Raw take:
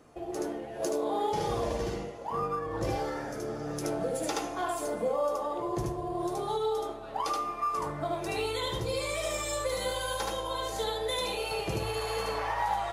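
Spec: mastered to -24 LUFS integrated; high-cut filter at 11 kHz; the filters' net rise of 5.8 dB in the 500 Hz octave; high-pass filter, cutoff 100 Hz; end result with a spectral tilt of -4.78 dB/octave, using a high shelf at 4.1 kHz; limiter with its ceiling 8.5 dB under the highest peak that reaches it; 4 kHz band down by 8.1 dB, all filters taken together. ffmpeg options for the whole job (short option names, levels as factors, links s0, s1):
-af "highpass=100,lowpass=11000,equalizer=f=500:t=o:g=7,equalizer=f=4000:t=o:g=-5.5,highshelf=f=4100:g=-8.5,volume=2.37,alimiter=limit=0.168:level=0:latency=1"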